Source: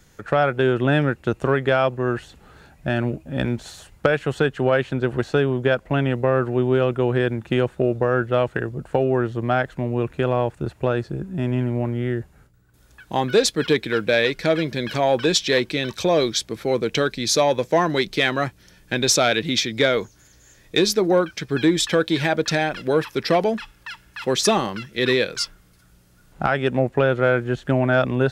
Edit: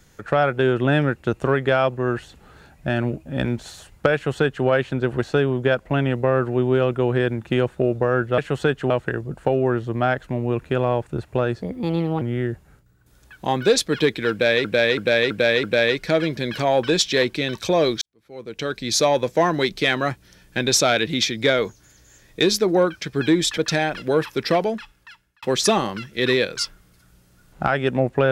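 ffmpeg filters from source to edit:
-filter_complex "[0:a]asplit=12[s0][s1][s2][s3][s4][s5][s6][s7][s8][s9][s10][s11];[s0]atrim=end=8.382[s12];[s1]atrim=start=4.138:end=4.662[s13];[s2]atrim=start=8.378:end=11.104[s14];[s3]atrim=start=11.1:end=11.89,asetpts=PTS-STARTPTS,asetrate=58653,aresample=44100[s15];[s4]atrim=start=11.886:end=14.322[s16];[s5]atrim=start=13.988:end=14.322[s17];[s6]atrim=start=13.988:end=14.322[s18];[s7]atrim=start=13.988:end=14.322[s19];[s8]atrim=start=13.988:end=16.37,asetpts=PTS-STARTPTS,afade=t=out:st=2.378:d=0.004:c=hsin[s20];[s9]atrim=start=16.37:end=21.932,asetpts=PTS-STARTPTS,afade=t=in:d=0.9:c=qua[s21];[s10]atrim=start=22.368:end=24.22,asetpts=PTS-STARTPTS,afade=t=out:st=0.892:d=0.96[s22];[s11]atrim=start=24.22,asetpts=PTS-STARTPTS,afade=t=in:d=0.004:c=hsin[s23];[s12][s13]acrossfade=d=0.004:c1=hsin:c2=hsin[s24];[s24][s14]acrossfade=d=0.004:c1=hsin:c2=hsin[s25];[s25][s15]acrossfade=d=0.004:c1=hsin:c2=hsin[s26];[s26][s16]acrossfade=d=0.004:c1=hsin:c2=hsin[s27];[s27][s17]acrossfade=d=0.004:c1=hsin:c2=hsin[s28];[s28][s18]acrossfade=d=0.004:c1=hsin:c2=hsin[s29];[s29][s19]acrossfade=d=0.004:c1=hsin:c2=hsin[s30];[s20][s21]concat=n=2:v=0:a=1[s31];[s30][s31]acrossfade=d=0.004:c1=hsin:c2=hsin[s32];[s22][s23]concat=n=2:v=0:a=1[s33];[s32][s33]acrossfade=d=0.004:c1=hsin:c2=hsin"

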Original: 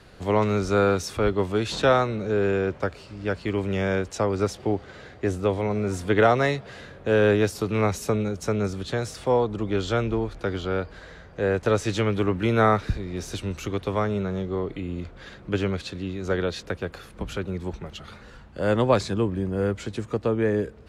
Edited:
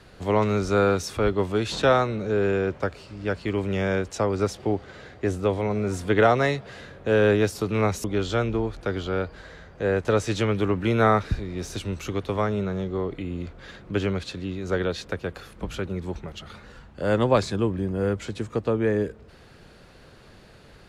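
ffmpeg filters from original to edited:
-filter_complex "[0:a]asplit=2[s0][s1];[s0]atrim=end=8.042[s2];[s1]atrim=start=9.618[s3];[s2][s3]acrossfade=d=0.004:c1=hsin:c2=hsin"

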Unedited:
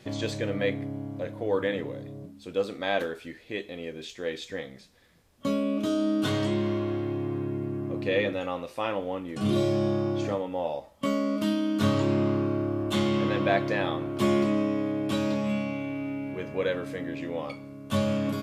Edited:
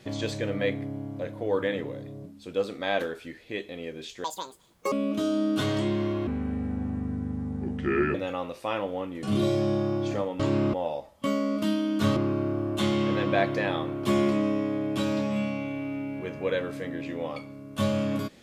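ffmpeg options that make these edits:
-filter_complex "[0:a]asplit=8[s0][s1][s2][s3][s4][s5][s6][s7];[s0]atrim=end=4.244[s8];[s1]atrim=start=4.24:end=5.58,asetpts=PTS-STARTPTS,asetrate=86877,aresample=44100[s9];[s2]atrim=start=5.576:end=6.934[s10];[s3]atrim=start=6.93:end=8.28,asetpts=PTS-STARTPTS,asetrate=31752,aresample=44100[s11];[s4]atrim=start=8.276:end=10.532[s12];[s5]atrim=start=11.958:end=12.302[s13];[s6]atrim=start=10.528:end=11.962[s14];[s7]atrim=start=12.298[s15];[s8][s9]acrossfade=d=0.004:c1=hsin:c2=hsin[s16];[s16][s10]acrossfade=d=0.004:c1=hsin:c2=hsin[s17];[s17][s11]acrossfade=d=0.004:c1=hsin:c2=hsin[s18];[s18][s12]acrossfade=d=0.004:c1=hsin:c2=hsin[s19];[s19][s13]acrossfade=d=0.004:c1=hsin:c2=hsin[s20];[s20][s14]acrossfade=d=0.004:c1=hsin:c2=hsin[s21];[s21][s15]acrossfade=d=0.004:c1=hsin:c2=hsin"

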